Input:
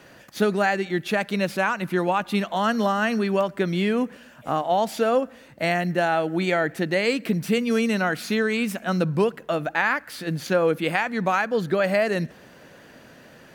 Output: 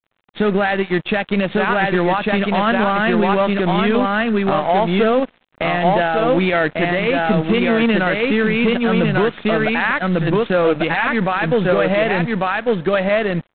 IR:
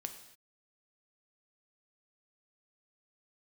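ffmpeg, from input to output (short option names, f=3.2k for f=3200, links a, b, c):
-filter_complex "[0:a]asplit=2[a][b];[b]acrusher=bits=4:dc=4:mix=0:aa=0.000001,volume=-11.5dB[c];[a][c]amix=inputs=2:normalize=0,aeval=exprs='sgn(val(0))*max(abs(val(0))-0.0119,0)':c=same,aecho=1:1:1147:0.668,alimiter=level_in=15dB:limit=-1dB:release=50:level=0:latency=1,volume=-5.5dB" -ar 8000 -c:a adpcm_g726 -b:a 24k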